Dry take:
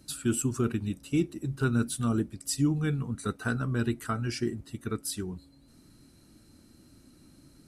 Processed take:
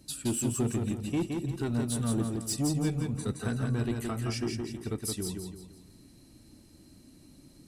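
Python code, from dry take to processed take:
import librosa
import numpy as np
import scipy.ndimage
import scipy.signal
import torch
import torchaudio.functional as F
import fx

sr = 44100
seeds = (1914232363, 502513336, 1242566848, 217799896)

y = fx.peak_eq(x, sr, hz=1400.0, db=-10.0, octaves=0.37)
y = 10.0 ** (-23.5 / 20.0) * np.tanh(y / 10.0 ** (-23.5 / 20.0))
y = fx.echo_feedback(y, sr, ms=169, feedback_pct=38, wet_db=-4)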